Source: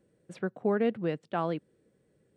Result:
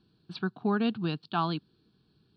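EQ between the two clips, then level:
low-pass with resonance 4,400 Hz, resonance Q 6
phaser with its sweep stopped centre 2,000 Hz, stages 6
+5.0 dB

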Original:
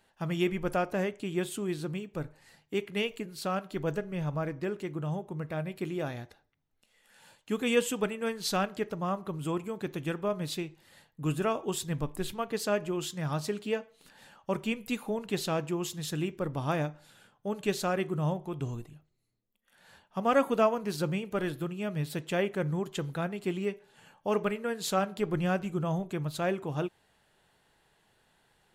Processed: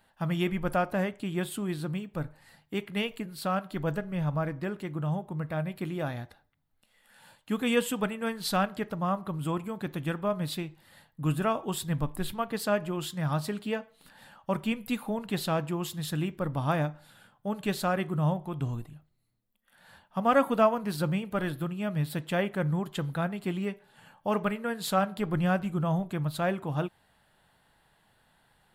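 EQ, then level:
graphic EQ with 15 bands 400 Hz −8 dB, 2,500 Hz −4 dB, 6,300 Hz −10 dB
+4.0 dB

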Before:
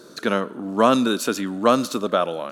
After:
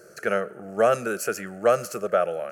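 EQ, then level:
phaser with its sweep stopped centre 1,000 Hz, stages 6
0.0 dB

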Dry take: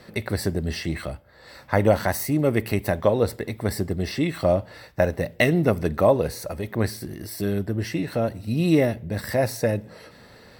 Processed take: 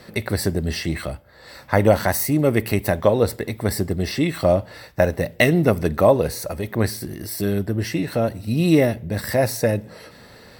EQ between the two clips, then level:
high-shelf EQ 6,000 Hz +4 dB
+3.0 dB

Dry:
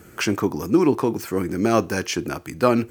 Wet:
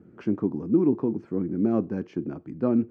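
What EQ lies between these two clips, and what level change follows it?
resonant band-pass 220 Hz, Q 1.4
high-frequency loss of the air 82 metres
0.0 dB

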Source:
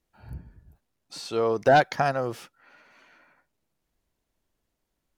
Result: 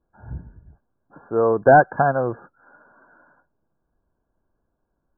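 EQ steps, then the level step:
linear-phase brick-wall low-pass 1,700 Hz
notch filter 1,300 Hz, Q 13
+6.0 dB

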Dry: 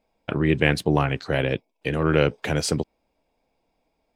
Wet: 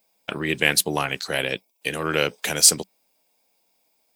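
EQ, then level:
RIAA equalisation recording
parametric band 190 Hz +7 dB 0.24 octaves
high-shelf EQ 4,700 Hz +8 dB
−1.0 dB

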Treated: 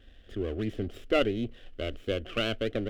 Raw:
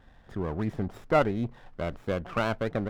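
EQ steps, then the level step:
low-shelf EQ 380 Hz +4 dB
parametric band 3,000 Hz +13 dB 0.44 octaves
phaser with its sweep stopped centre 380 Hz, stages 4
0.0 dB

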